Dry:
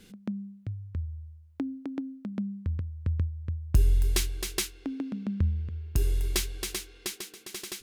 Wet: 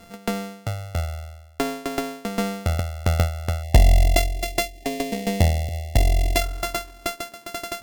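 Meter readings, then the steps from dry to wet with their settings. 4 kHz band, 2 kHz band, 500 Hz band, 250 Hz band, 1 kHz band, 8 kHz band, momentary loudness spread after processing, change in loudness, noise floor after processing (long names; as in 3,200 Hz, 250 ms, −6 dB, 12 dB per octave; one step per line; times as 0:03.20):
+6.5 dB, +12.5 dB, +15.5 dB, +5.5 dB, +21.5 dB, +3.0 dB, 13 LU, +7.5 dB, −47 dBFS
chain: samples sorted by size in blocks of 64 samples
time-frequency box erased 0:03.63–0:06.41, 780–1,800 Hz
harmonic generator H 6 −18 dB, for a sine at −10 dBFS
level +7.5 dB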